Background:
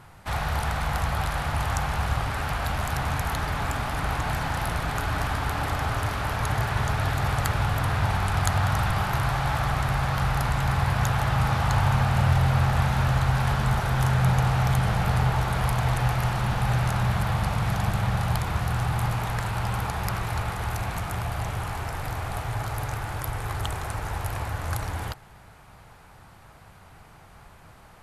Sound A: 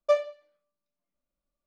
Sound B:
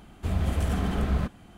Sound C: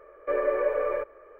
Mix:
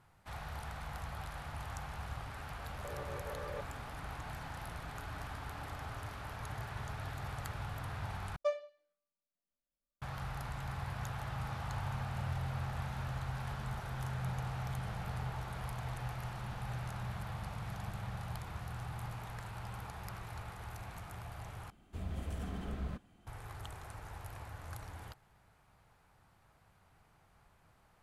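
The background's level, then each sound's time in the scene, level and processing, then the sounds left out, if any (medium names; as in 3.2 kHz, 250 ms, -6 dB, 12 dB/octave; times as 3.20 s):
background -17 dB
2.57 s: add C -14.5 dB + compressor with a negative ratio -31 dBFS
8.36 s: replace with A -11 dB
21.70 s: replace with B -14 dB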